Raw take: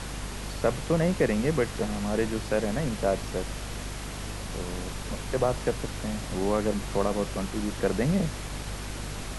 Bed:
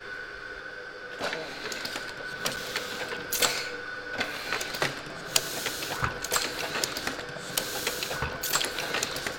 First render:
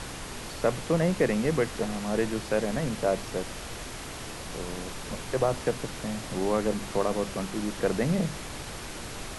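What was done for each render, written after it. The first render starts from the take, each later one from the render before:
mains-hum notches 50/100/150/200/250 Hz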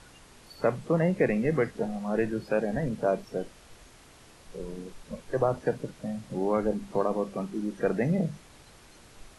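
noise reduction from a noise print 15 dB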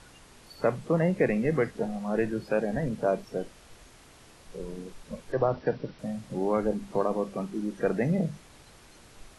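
0:05.32–0:05.99: linear-phase brick-wall low-pass 5,900 Hz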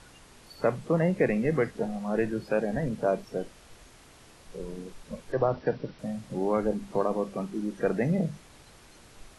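no processing that can be heard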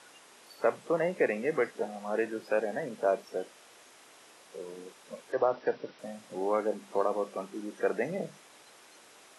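high-pass filter 400 Hz 12 dB per octave
notch filter 4,400 Hz, Q 19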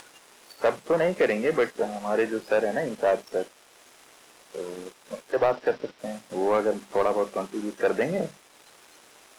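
upward compression, threshold −50 dBFS
leveller curve on the samples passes 2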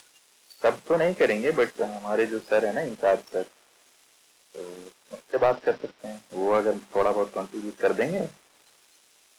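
multiband upward and downward expander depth 40%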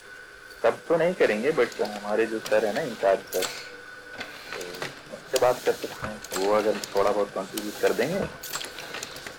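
mix in bed −6 dB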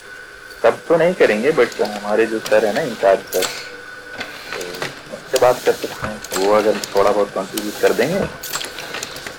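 level +8.5 dB
brickwall limiter −2 dBFS, peak gain reduction 2.5 dB

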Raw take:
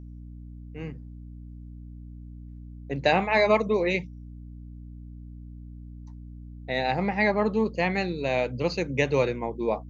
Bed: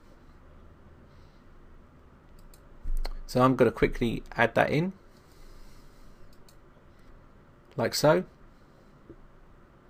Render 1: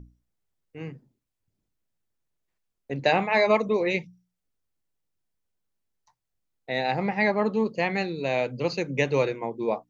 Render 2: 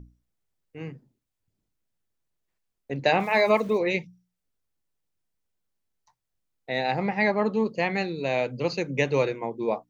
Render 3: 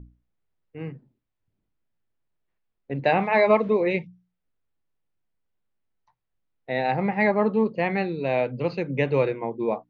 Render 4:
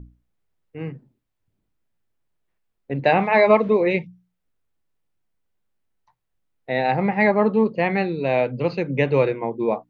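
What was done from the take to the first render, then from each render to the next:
mains-hum notches 60/120/180/240/300 Hz
0:03.20–0:03.78: centre clipping without the shift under −43 dBFS
Bessel low-pass filter 2,600 Hz, order 4; harmonic and percussive parts rebalanced harmonic +3 dB
level +3.5 dB

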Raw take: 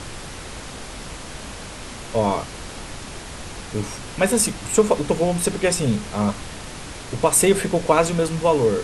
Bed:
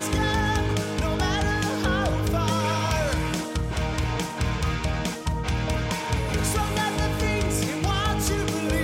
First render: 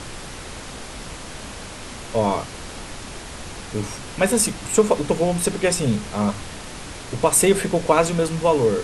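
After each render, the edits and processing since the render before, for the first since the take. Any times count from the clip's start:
hum removal 50 Hz, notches 3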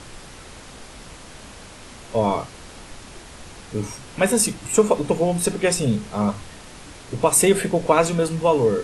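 noise reduction from a noise print 6 dB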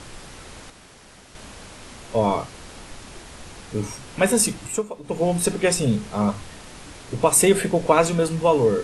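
0:00.70–0:01.35: fill with room tone
0:04.61–0:05.27: duck −15.5 dB, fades 0.24 s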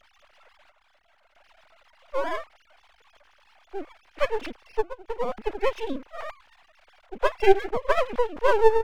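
three sine waves on the formant tracks
half-wave rectification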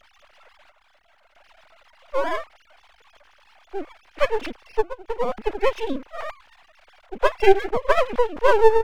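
level +4 dB
brickwall limiter −1 dBFS, peak gain reduction 2 dB

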